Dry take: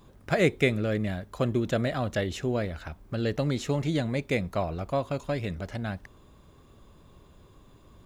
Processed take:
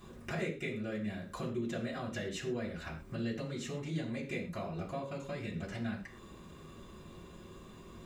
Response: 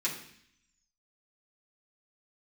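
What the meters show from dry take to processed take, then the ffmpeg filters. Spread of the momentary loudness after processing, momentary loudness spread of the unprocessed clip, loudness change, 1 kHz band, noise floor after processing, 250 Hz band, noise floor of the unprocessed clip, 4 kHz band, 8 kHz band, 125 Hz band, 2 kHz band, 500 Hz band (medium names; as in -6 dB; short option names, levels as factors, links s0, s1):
14 LU, 10 LU, -10.0 dB, -10.0 dB, -53 dBFS, -8.0 dB, -56 dBFS, -9.0 dB, -6.0 dB, -11.0 dB, -9.5 dB, -11.5 dB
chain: -filter_complex "[0:a]acompressor=threshold=0.00891:ratio=6[s0];[1:a]atrim=start_sample=2205,afade=t=out:st=0.2:d=0.01,atrim=end_sample=9261,asetrate=48510,aresample=44100[s1];[s0][s1]afir=irnorm=-1:irlink=0,volume=1.12"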